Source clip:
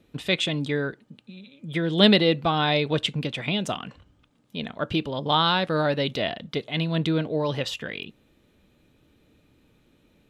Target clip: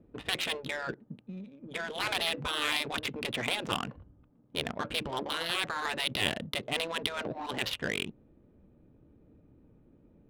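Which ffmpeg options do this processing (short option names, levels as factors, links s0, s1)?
-af "afftfilt=real='re*lt(hypot(re,im),0.141)':imag='im*lt(hypot(re,im),0.141)':win_size=1024:overlap=0.75,adynamicsmooth=sensitivity=5.5:basefreq=730,volume=1.33"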